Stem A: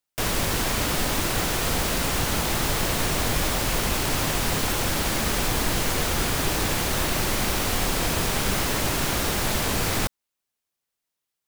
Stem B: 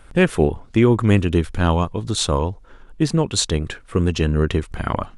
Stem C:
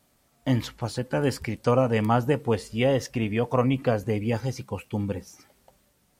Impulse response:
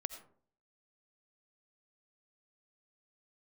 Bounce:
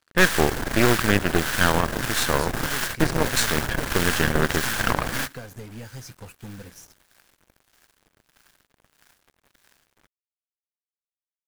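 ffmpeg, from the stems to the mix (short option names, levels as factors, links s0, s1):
-filter_complex "[0:a]acrossover=split=850[s0][s1];[s0]aeval=exprs='val(0)*(1-0.7/2+0.7/2*cos(2*PI*1.6*n/s))':c=same[s2];[s1]aeval=exprs='val(0)*(1-0.7/2-0.7/2*cos(2*PI*1.6*n/s))':c=same[s3];[s2][s3]amix=inputs=2:normalize=0,volume=0.944[s4];[1:a]highpass=f=190:p=1,volume=0.596,asplit=2[s5][s6];[2:a]bass=f=250:g=4,treble=f=4000:g=14,acompressor=threshold=0.0631:ratio=6,adelay=1500,volume=0.447[s7];[s6]apad=whole_len=505871[s8];[s4][s8]sidechaingate=range=0.0562:threshold=0.00126:ratio=16:detection=peak[s9];[s9][s5][s7]amix=inputs=3:normalize=0,equalizer=f=1600:t=o:w=0.42:g=12,acrusher=bits=6:mix=0:aa=0.5,aeval=exprs='0.562*(cos(1*acos(clip(val(0)/0.562,-1,1)))-cos(1*PI/2))+0.112*(cos(6*acos(clip(val(0)/0.562,-1,1)))-cos(6*PI/2))+0.0251*(cos(7*acos(clip(val(0)/0.562,-1,1)))-cos(7*PI/2))':c=same"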